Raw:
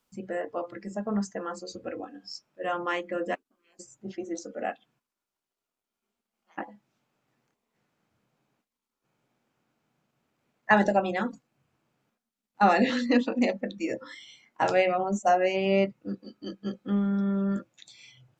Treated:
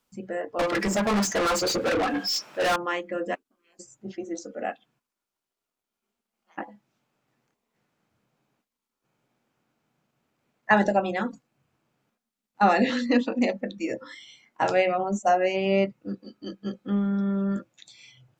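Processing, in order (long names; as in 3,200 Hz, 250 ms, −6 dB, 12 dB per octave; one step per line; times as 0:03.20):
0:00.59–0:02.76: mid-hump overdrive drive 35 dB, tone 5,900 Hz, clips at −18 dBFS
level +1 dB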